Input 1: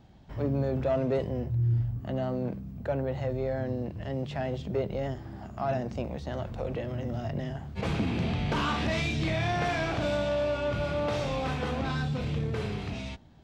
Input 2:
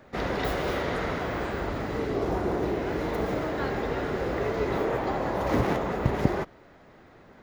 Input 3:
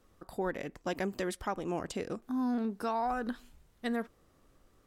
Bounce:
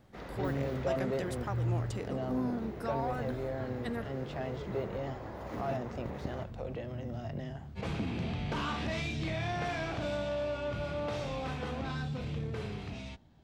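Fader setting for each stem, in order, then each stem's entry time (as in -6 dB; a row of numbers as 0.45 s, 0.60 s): -6.0 dB, -16.0 dB, -4.5 dB; 0.00 s, 0.00 s, 0.00 s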